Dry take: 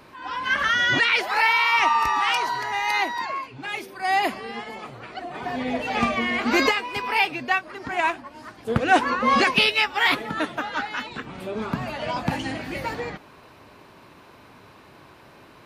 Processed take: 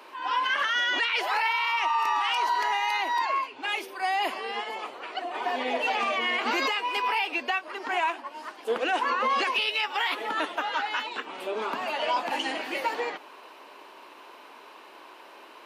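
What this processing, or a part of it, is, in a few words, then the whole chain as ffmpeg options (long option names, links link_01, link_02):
laptop speaker: -af "highpass=frequency=330:width=0.5412,highpass=frequency=330:width=1.3066,equalizer=frequency=950:width_type=o:width=0.43:gain=5,equalizer=frequency=2900:width_type=o:width=0.36:gain=6,alimiter=limit=-17.5dB:level=0:latency=1:release=98"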